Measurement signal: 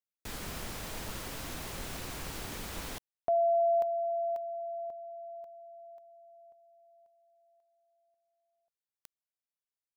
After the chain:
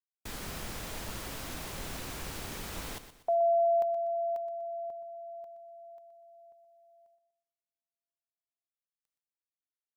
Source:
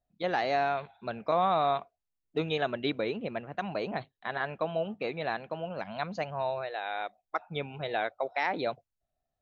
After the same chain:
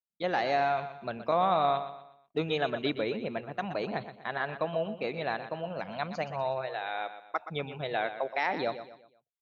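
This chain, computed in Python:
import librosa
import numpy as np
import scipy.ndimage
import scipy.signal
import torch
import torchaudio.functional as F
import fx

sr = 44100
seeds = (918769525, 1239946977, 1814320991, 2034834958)

y = fx.gate_hold(x, sr, open_db=-56.0, close_db=-64.0, hold_ms=71.0, range_db=-33, attack_ms=2.8, release_ms=100.0)
y = fx.echo_feedback(y, sr, ms=122, feedback_pct=38, wet_db=-11.5)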